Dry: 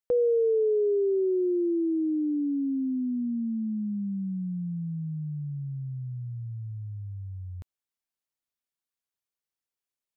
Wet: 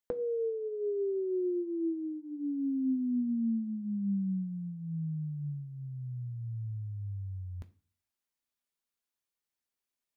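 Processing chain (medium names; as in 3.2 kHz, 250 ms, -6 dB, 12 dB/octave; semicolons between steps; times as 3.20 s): compression 6:1, threshold -33 dBFS, peak gain reduction 10.5 dB; on a send: reverberation RT60 0.40 s, pre-delay 3 ms, DRR 7 dB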